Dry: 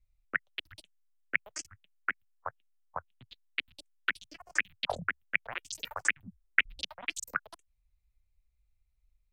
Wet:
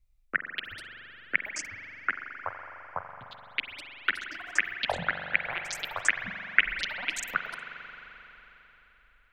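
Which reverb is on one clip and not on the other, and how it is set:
spring reverb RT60 3.9 s, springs 42 ms, chirp 25 ms, DRR 5.5 dB
level +3 dB

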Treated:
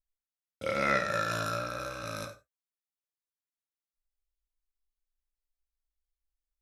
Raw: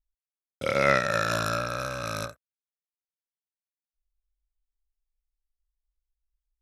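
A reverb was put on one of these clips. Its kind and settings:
reverb whose tail is shaped and stops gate 130 ms falling, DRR 4.5 dB
level −7 dB

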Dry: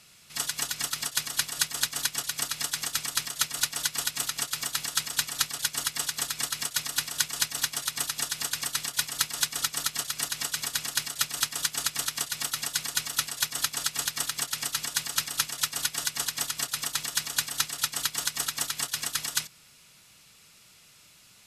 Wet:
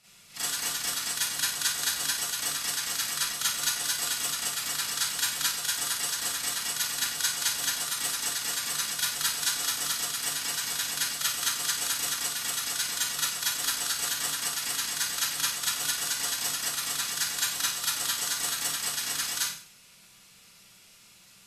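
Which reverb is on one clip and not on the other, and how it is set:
four-comb reverb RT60 0.46 s, combs from 32 ms, DRR −9.5 dB
level −9 dB

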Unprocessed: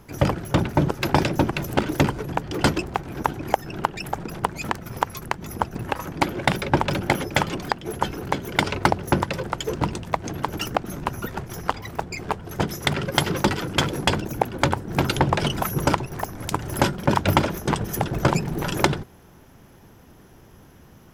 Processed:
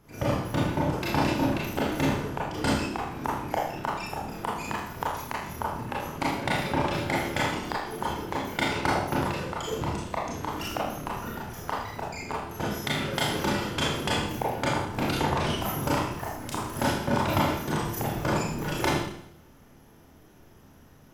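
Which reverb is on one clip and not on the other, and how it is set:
four-comb reverb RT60 0.71 s, combs from 26 ms, DRR −6 dB
level −11 dB

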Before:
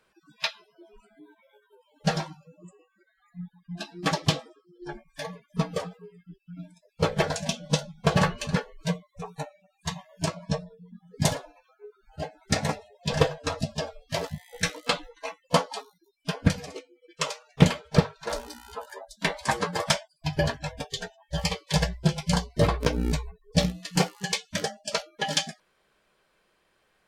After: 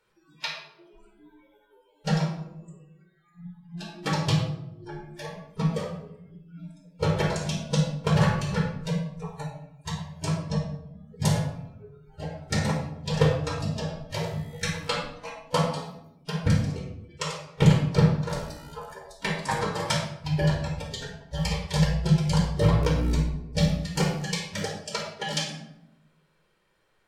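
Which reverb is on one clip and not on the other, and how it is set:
rectangular room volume 2,100 cubic metres, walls furnished, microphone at 4.5 metres
level −6 dB

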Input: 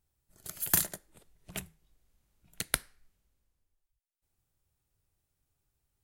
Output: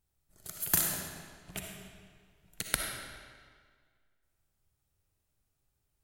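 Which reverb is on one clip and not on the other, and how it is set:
comb and all-pass reverb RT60 1.8 s, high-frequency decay 0.85×, pre-delay 20 ms, DRR 1 dB
level −1.5 dB

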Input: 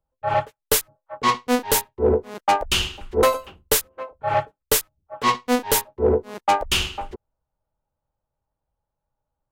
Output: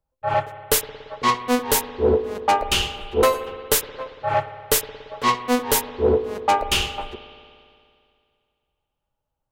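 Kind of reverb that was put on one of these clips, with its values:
spring reverb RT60 2.3 s, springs 57 ms, chirp 65 ms, DRR 11 dB

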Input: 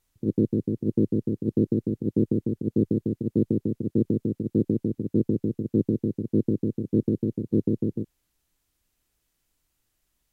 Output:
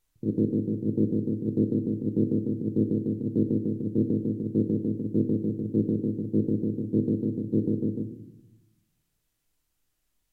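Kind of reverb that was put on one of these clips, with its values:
rectangular room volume 240 cubic metres, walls mixed, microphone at 0.51 metres
level −3.5 dB

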